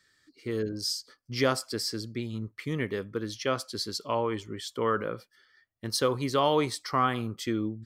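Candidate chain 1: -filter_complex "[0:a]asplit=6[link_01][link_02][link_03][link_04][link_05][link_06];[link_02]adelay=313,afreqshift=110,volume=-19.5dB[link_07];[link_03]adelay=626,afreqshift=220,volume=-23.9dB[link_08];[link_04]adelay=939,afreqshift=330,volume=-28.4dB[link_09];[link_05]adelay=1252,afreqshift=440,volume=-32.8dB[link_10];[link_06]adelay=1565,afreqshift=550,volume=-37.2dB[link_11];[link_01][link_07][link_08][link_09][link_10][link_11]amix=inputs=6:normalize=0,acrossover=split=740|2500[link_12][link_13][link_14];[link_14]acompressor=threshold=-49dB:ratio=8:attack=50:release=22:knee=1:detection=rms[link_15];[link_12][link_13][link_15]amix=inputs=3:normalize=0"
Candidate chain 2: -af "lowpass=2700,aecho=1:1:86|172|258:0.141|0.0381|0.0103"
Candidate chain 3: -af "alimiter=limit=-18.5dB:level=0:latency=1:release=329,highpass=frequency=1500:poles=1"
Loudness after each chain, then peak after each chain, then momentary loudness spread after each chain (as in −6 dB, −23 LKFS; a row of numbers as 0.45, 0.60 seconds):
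−31.0, −31.0, −37.0 LKFS; −12.5, −12.0, −19.0 dBFS; 13, 12, 13 LU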